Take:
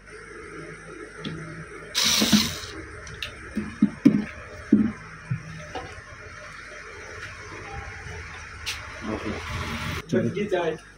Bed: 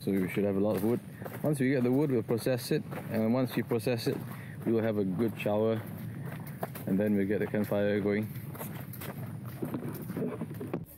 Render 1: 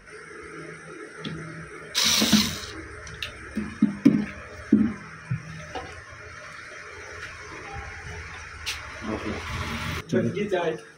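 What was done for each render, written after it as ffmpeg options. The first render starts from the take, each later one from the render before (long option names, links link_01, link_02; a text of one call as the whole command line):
ffmpeg -i in.wav -af "bandreject=frequency=50:width_type=h:width=4,bandreject=frequency=100:width_type=h:width=4,bandreject=frequency=150:width_type=h:width=4,bandreject=frequency=200:width_type=h:width=4,bandreject=frequency=250:width_type=h:width=4,bandreject=frequency=300:width_type=h:width=4,bandreject=frequency=350:width_type=h:width=4,bandreject=frequency=400:width_type=h:width=4,bandreject=frequency=450:width_type=h:width=4,bandreject=frequency=500:width_type=h:width=4,bandreject=frequency=550:width_type=h:width=4,bandreject=frequency=600:width_type=h:width=4" out.wav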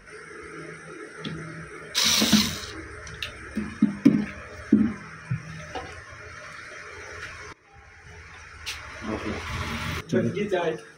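ffmpeg -i in.wav -filter_complex "[0:a]asplit=2[link_01][link_02];[link_01]atrim=end=7.53,asetpts=PTS-STARTPTS,afade=type=out:start_time=7.526:duration=0.004:curve=hsin:silence=0.0630957[link_03];[link_02]atrim=start=7.53,asetpts=PTS-STARTPTS,afade=type=in:duration=1.65:silence=0.0630957[link_04];[link_03][link_04]concat=n=2:v=0:a=1" out.wav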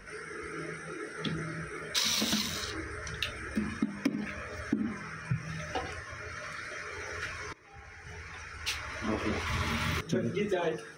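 ffmpeg -i in.wav -filter_complex "[0:a]acrossover=split=290[link_01][link_02];[link_01]alimiter=limit=-18.5dB:level=0:latency=1:release=436[link_03];[link_03][link_02]amix=inputs=2:normalize=0,acompressor=threshold=-26dB:ratio=10" out.wav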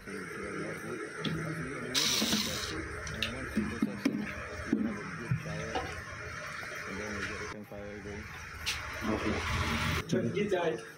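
ffmpeg -i in.wav -i bed.wav -filter_complex "[1:a]volume=-15.5dB[link_01];[0:a][link_01]amix=inputs=2:normalize=0" out.wav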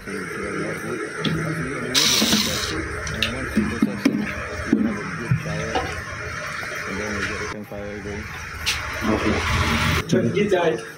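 ffmpeg -i in.wav -af "volume=11.5dB" out.wav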